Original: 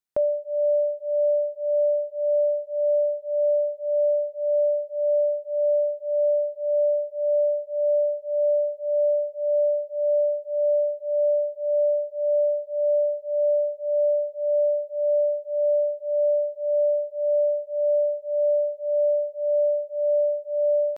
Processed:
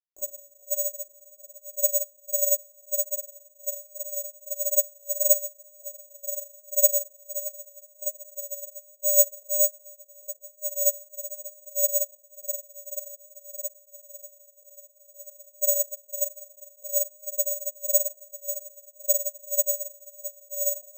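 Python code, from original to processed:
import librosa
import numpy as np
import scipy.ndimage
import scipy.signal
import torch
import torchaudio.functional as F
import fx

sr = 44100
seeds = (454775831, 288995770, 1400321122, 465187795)

y = fx.highpass(x, sr, hz=660.0, slope=24, at=(12.91, 15.13), fade=0.02)
y = fx.step_gate(y, sr, bpm=75, pattern='xx.xx..xxxx', floor_db=-12.0, edge_ms=4.5)
y = fx.chorus_voices(y, sr, voices=4, hz=1.2, base_ms=22, depth_ms=3.0, mix_pct=65)
y = fx.echo_diffused(y, sr, ms=975, feedback_pct=53, wet_db=-12.0)
y = fx.room_shoebox(y, sr, seeds[0], volume_m3=1900.0, walls='furnished', distance_m=3.6)
y = (np.kron(scipy.signal.resample_poly(y, 1, 6), np.eye(6)[0]) * 6)[:len(y)]
y = fx.upward_expand(y, sr, threshold_db=-23.0, expansion=2.5)
y = F.gain(torch.from_numpy(y), -4.0).numpy()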